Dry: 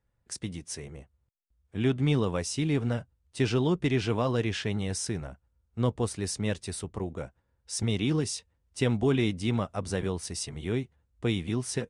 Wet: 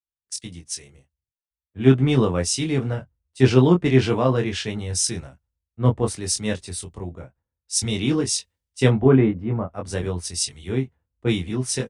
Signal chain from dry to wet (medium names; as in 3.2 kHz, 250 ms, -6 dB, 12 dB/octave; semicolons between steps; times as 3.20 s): 8.89–9.67 s: low-pass 2.1 kHz -> 1.2 kHz 12 dB/octave; doubling 23 ms -4.5 dB; three bands expanded up and down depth 100%; trim +5 dB